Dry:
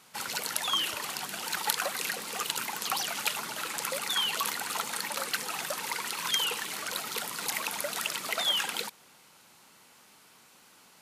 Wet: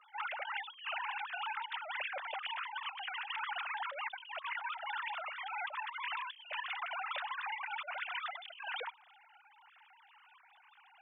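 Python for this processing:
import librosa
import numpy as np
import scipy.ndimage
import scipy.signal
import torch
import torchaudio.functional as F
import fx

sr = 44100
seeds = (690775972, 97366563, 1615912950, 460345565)

y = fx.sine_speech(x, sr)
y = scipy.signal.sosfilt(scipy.signal.butter(2, 390.0, 'highpass', fs=sr, output='sos'), y)
y = fx.over_compress(y, sr, threshold_db=-41.0, ratio=-1.0)
y = y * 10.0 ** (-2.0 / 20.0)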